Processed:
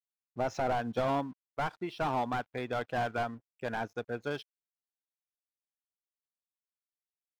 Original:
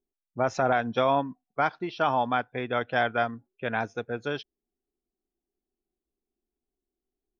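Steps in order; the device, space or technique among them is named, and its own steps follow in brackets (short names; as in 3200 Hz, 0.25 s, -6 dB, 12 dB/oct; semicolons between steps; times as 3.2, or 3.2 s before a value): early transistor amplifier (crossover distortion -57 dBFS; slew limiter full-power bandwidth 56 Hz); gain -4 dB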